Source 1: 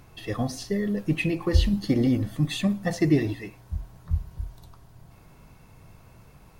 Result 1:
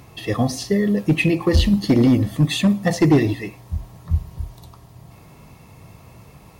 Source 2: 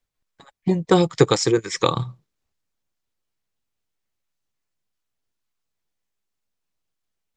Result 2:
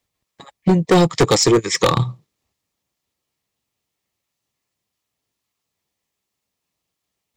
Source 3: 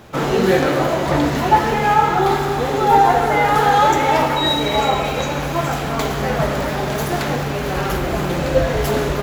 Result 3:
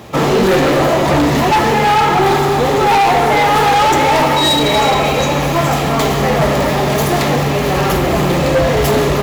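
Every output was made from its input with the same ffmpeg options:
-af "highpass=63,bandreject=frequency=1500:width=6,asoftclip=type=hard:threshold=-17dB,volume=8dB"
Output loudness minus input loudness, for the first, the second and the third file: +7.5, +4.0, +4.5 LU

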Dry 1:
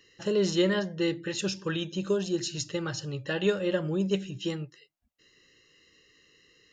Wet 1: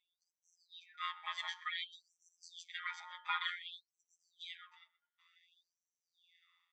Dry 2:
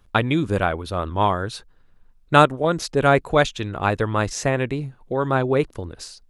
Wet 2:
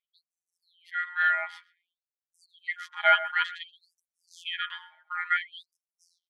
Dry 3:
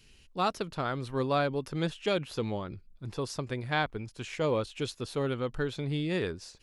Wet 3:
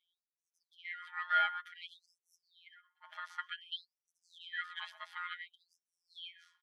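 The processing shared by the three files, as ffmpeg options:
-filter_complex "[0:a]aemphasis=mode=production:type=cd,bandreject=frequency=6200:width=18,acrossover=split=740|2900[link_01][link_02][link_03];[link_01]acompressor=threshold=-32dB:ratio=6[link_04];[link_04][link_02][link_03]amix=inputs=3:normalize=0,equalizer=frequency=2000:width_type=o:width=1:gain=10,equalizer=frequency=4000:width_type=o:width=1:gain=-11,equalizer=frequency=8000:width_type=o:width=1:gain=-9,afftfilt=real='hypot(re,im)*cos(PI*b)':imag='0':win_size=1024:overlap=0.75,asplit=3[link_05][link_06][link_07];[link_05]bandpass=frequency=730:width_type=q:width=8,volume=0dB[link_08];[link_06]bandpass=frequency=1090:width_type=q:width=8,volume=-6dB[link_09];[link_07]bandpass=frequency=2440:width_type=q:width=8,volume=-9dB[link_10];[link_08][link_09][link_10]amix=inputs=3:normalize=0,dynaudnorm=framelen=530:gausssize=3:maxgain=16dB,aeval=exprs='val(0)*sin(2*PI*730*n/s)':channel_layout=same,asplit=2[link_11][link_12];[link_12]adelay=126,lowpass=frequency=880:poles=1,volume=-9.5dB,asplit=2[link_13][link_14];[link_14]adelay=126,lowpass=frequency=880:poles=1,volume=0.16[link_15];[link_13][link_15]amix=inputs=2:normalize=0[link_16];[link_11][link_16]amix=inputs=2:normalize=0,afftfilt=real='re*gte(b*sr/1024,590*pow(5600/590,0.5+0.5*sin(2*PI*0.55*pts/sr)))':imag='im*gte(b*sr/1024,590*pow(5600/590,0.5+0.5*sin(2*PI*0.55*pts/sr)))':win_size=1024:overlap=0.75"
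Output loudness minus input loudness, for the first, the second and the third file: −12.5, −6.5, −7.0 LU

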